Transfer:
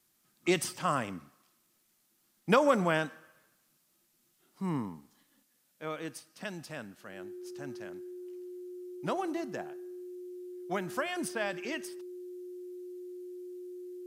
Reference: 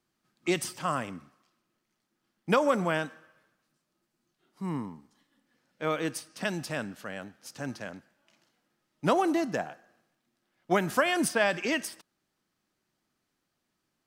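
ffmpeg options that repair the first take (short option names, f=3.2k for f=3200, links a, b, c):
-af "bandreject=f=360:w=30,agate=range=-21dB:threshold=-64dB,asetnsamples=n=441:p=0,asendcmd='5.43 volume volume 8.5dB',volume=0dB"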